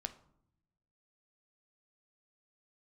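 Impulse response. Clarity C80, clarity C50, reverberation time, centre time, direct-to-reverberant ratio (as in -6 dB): 18.0 dB, 14.0 dB, 0.70 s, 6 ms, 8.5 dB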